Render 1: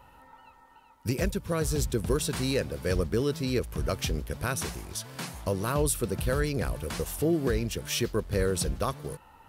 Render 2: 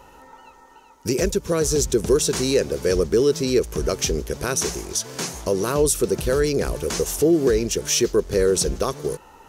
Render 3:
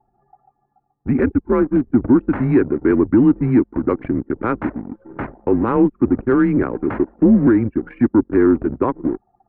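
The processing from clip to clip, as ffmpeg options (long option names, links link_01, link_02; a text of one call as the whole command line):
ffmpeg -i in.wav -filter_complex "[0:a]equalizer=frequency=100:width_type=o:width=0.67:gain=-7,equalizer=frequency=400:width_type=o:width=0.67:gain=10,equalizer=frequency=6300:width_type=o:width=0.67:gain=12,asplit=2[link_01][link_02];[link_02]alimiter=limit=-21dB:level=0:latency=1:release=88,volume=0dB[link_03];[link_01][link_03]amix=inputs=2:normalize=0" out.wav
ffmpeg -i in.wav -af "highpass=frequency=210:width_type=q:width=0.5412,highpass=frequency=210:width_type=q:width=1.307,lowpass=frequency=2100:width_type=q:width=0.5176,lowpass=frequency=2100:width_type=q:width=0.7071,lowpass=frequency=2100:width_type=q:width=1.932,afreqshift=-120,anlmdn=10,acontrast=62" out.wav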